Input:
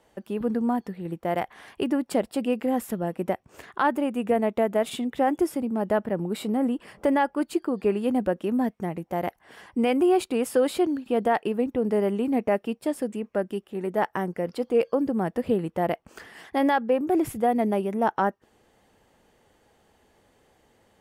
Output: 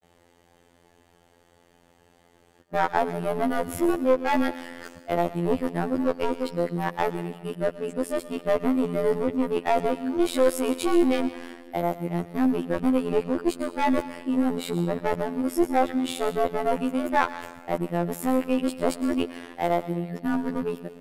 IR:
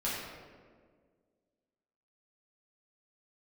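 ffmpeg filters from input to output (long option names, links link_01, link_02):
-filter_complex "[0:a]areverse,aeval=exprs='clip(val(0),-1,0.0631)':channel_layout=same,asplit=2[link_01][link_02];[1:a]atrim=start_sample=2205,highshelf=frequency=2300:gain=10,adelay=112[link_03];[link_02][link_03]afir=irnorm=-1:irlink=0,volume=-22.5dB[link_04];[link_01][link_04]amix=inputs=2:normalize=0,afftfilt=real='hypot(re,im)*cos(PI*b)':imag='0':win_size=2048:overlap=0.75,volume=5.5dB"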